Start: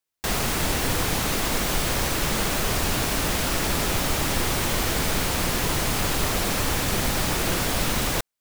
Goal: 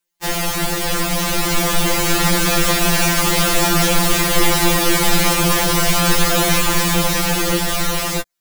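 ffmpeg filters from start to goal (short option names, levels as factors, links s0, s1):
-filter_complex "[0:a]asplit=2[s0][s1];[s1]alimiter=limit=0.0891:level=0:latency=1:release=137,volume=1.26[s2];[s0][s2]amix=inputs=2:normalize=0,dynaudnorm=f=310:g=11:m=2,afftfilt=real='re*2.83*eq(mod(b,8),0)':imag='im*2.83*eq(mod(b,8),0)':win_size=2048:overlap=0.75,volume=1.33"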